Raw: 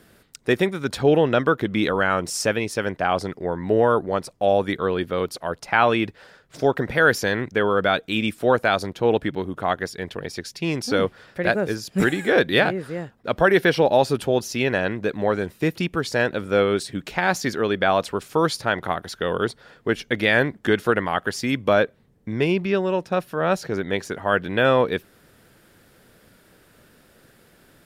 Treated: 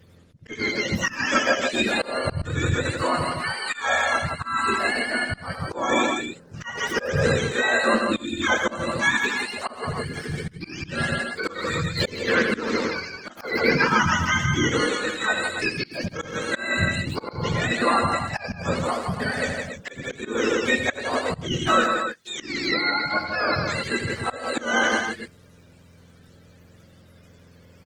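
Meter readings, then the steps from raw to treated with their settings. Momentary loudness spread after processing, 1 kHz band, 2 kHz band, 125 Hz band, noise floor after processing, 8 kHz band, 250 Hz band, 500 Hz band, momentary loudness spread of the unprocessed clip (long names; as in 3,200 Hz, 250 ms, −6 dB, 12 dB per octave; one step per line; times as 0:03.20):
10 LU, −1.0 dB, +1.5 dB, −0.5 dB, −51 dBFS, +2.0 dB, −3.5 dB, −6.5 dB, 9 LU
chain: frequency axis turned over on the octave scale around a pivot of 890 Hz
loudspeakers that aren't time-aligned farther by 28 metres −9 dB, 56 metres −5 dB, 96 metres −9 dB
volume swells 261 ms
Opus 16 kbit/s 48,000 Hz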